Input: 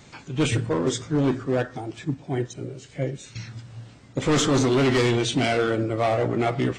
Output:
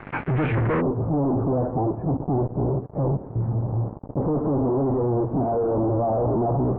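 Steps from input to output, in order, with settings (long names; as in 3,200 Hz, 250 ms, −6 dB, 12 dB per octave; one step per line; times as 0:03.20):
fuzz pedal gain 45 dB, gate −46 dBFS
Butterworth low-pass 2,200 Hz 36 dB per octave, from 0:00.80 930 Hz
level −7 dB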